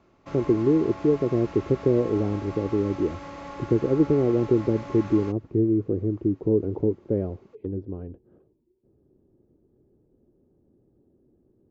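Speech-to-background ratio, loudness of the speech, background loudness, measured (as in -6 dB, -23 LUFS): 15.0 dB, -24.5 LUFS, -39.5 LUFS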